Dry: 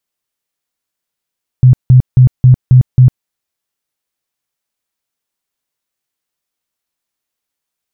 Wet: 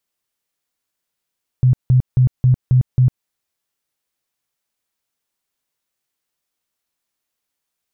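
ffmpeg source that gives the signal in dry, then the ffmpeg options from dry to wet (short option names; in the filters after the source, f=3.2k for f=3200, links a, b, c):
-f lavfi -i "aevalsrc='0.891*sin(2*PI*127*mod(t,0.27))*lt(mod(t,0.27),13/127)':d=1.62:s=44100"
-af "alimiter=limit=-8.5dB:level=0:latency=1:release=118"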